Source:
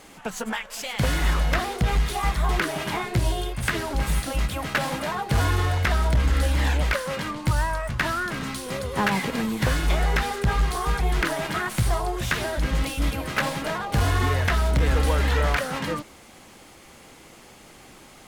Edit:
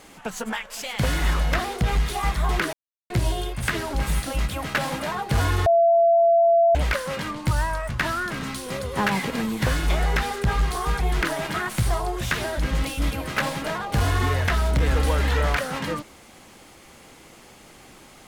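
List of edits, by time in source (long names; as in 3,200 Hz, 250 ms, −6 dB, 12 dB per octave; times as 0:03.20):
0:02.73–0:03.10: silence
0:05.66–0:06.75: beep over 676 Hz −13.5 dBFS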